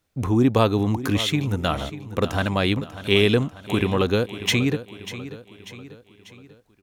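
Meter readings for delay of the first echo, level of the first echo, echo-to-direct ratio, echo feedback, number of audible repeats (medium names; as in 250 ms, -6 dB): 592 ms, -14.0 dB, -13.0 dB, 49%, 4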